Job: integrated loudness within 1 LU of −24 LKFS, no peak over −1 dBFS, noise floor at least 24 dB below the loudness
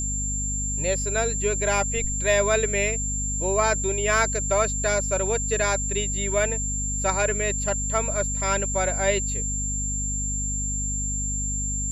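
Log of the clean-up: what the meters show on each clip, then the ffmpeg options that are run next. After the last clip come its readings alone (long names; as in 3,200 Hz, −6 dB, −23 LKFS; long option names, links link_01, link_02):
mains hum 50 Hz; hum harmonics up to 250 Hz; level of the hum −27 dBFS; interfering tone 7,300 Hz; level of the tone −27 dBFS; integrated loudness −23.5 LKFS; sample peak −7.5 dBFS; target loudness −24.0 LKFS
→ -af "bandreject=frequency=50:width_type=h:width=4,bandreject=frequency=100:width_type=h:width=4,bandreject=frequency=150:width_type=h:width=4,bandreject=frequency=200:width_type=h:width=4,bandreject=frequency=250:width_type=h:width=4"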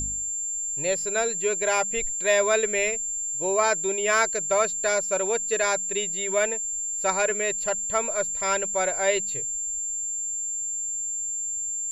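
mains hum none found; interfering tone 7,300 Hz; level of the tone −27 dBFS
→ -af "bandreject=frequency=7300:width=30"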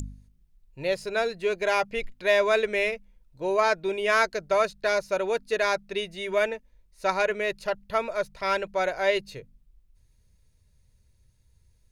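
interfering tone none found; integrated loudness −26.5 LKFS; sample peak −9.0 dBFS; target loudness −24.0 LKFS
→ -af "volume=2.5dB"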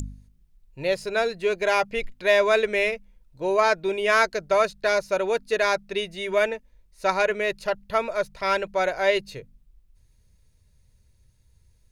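integrated loudness −24.0 LKFS; sample peak −6.5 dBFS; background noise floor −61 dBFS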